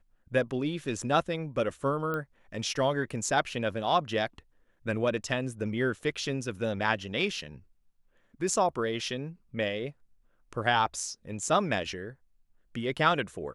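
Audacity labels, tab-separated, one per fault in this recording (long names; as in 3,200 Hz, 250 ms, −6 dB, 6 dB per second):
2.140000	2.140000	click −21 dBFS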